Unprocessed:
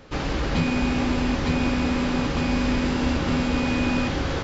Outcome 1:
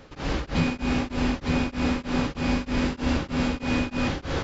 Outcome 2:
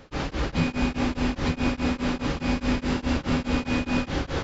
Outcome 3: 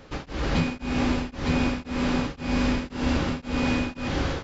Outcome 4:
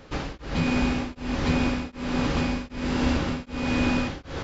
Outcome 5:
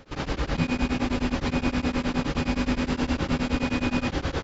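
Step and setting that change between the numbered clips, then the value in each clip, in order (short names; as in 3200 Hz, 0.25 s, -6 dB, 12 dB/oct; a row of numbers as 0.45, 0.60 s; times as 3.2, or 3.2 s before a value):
beating tremolo, nulls at: 3.2, 4.8, 1.9, 1.3, 9.6 Hz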